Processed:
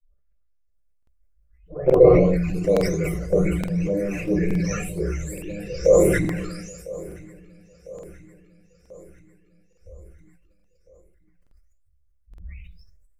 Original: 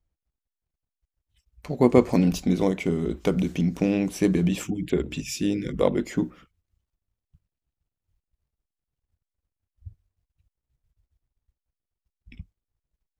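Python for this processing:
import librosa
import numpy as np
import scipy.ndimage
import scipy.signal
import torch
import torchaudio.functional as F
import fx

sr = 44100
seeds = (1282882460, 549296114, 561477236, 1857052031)

p1 = fx.spec_delay(x, sr, highs='late', ms=720)
p2 = fx.high_shelf(p1, sr, hz=7000.0, db=-4.5)
p3 = fx.fixed_phaser(p2, sr, hz=910.0, stages=6)
p4 = fx.room_shoebox(p3, sr, seeds[0], volume_m3=160.0, walls='furnished', distance_m=2.4)
p5 = fx.env_flanger(p4, sr, rest_ms=5.1, full_db=-18.5)
p6 = p5 + fx.echo_feedback(p5, sr, ms=1002, feedback_pct=55, wet_db=-19.0, dry=0)
p7 = fx.buffer_crackle(p6, sr, first_s=0.98, period_s=0.87, block=2048, kind='repeat')
p8 = fx.sustainer(p7, sr, db_per_s=34.0)
y = p8 * 10.0 ** (2.0 / 20.0)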